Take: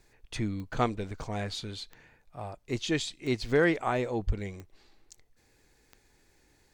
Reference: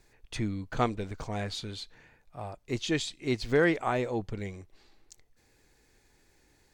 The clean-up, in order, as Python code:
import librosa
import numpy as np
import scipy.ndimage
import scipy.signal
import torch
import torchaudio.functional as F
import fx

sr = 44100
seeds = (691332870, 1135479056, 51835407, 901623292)

y = fx.fix_declick_ar(x, sr, threshold=10.0)
y = fx.fix_deplosive(y, sr, at_s=(4.26,))